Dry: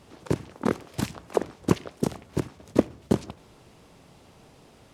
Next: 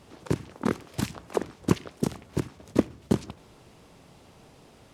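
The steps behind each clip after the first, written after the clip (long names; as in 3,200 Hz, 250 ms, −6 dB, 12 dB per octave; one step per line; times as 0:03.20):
dynamic equaliser 610 Hz, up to −5 dB, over −38 dBFS, Q 1.2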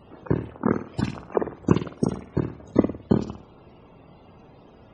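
spectral peaks only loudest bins 64
on a send: flutter between parallel walls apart 9 metres, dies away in 0.4 s
on the sum: level +3.5 dB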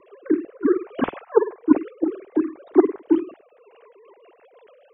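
three sine waves on the formant tracks
rotating-speaker cabinet horn 0.65 Hz, later 7.5 Hz, at 0:03.53
level +5.5 dB
AAC 64 kbit/s 32,000 Hz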